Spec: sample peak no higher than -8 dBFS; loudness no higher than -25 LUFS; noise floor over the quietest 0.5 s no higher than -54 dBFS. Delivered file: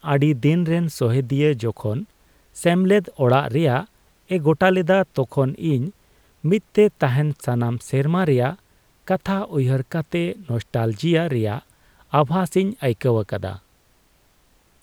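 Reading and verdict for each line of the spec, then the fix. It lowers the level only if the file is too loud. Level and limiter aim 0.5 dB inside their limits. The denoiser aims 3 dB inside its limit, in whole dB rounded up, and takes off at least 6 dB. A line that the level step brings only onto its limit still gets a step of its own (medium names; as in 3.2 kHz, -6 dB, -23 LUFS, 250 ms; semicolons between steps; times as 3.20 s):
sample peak -4.0 dBFS: fail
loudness -21.0 LUFS: fail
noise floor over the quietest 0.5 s -59 dBFS: pass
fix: trim -4.5 dB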